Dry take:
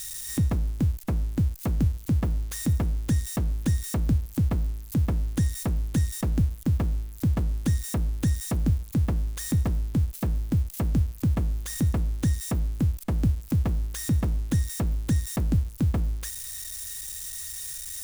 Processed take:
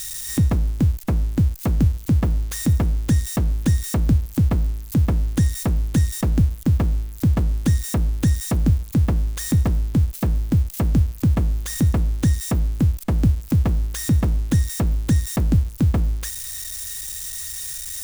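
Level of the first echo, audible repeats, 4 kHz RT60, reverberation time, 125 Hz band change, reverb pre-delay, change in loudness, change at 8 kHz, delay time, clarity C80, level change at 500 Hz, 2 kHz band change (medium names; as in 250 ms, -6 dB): no echo, no echo, no reverb, no reverb, +6.0 dB, no reverb, +6.0 dB, +5.0 dB, no echo, no reverb, +6.0 dB, +6.0 dB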